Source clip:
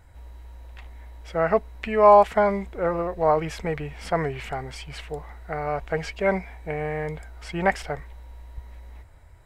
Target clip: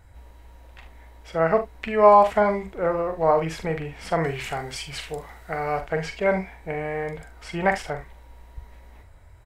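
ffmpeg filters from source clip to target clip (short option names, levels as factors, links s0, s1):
-filter_complex "[0:a]asettb=1/sr,asplit=3[s0][s1][s2];[s0]atrim=end=4.244[s3];[s1]atrim=start=4.24:end=5.81,asetpts=PTS-STARTPTS,afade=t=in:d=0.004:c=qsin,afade=t=out:st=1.566:d=0.004:c=qsin,highshelf=f=2600:g=8.5[s4];[s2]atrim=start=5.806[s5];[s3][s4]acrossfade=d=0.004:c1=hsin:c2=qsin[s6];[s6][s5]acrossfade=d=0.004:c1=qsin:c2=hsin,aecho=1:1:43|74:0.398|0.168"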